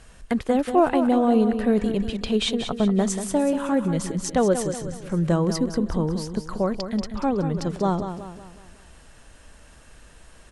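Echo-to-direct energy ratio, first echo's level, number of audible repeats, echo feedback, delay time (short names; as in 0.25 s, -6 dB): -8.0 dB, -9.0 dB, 4, 45%, 0.186 s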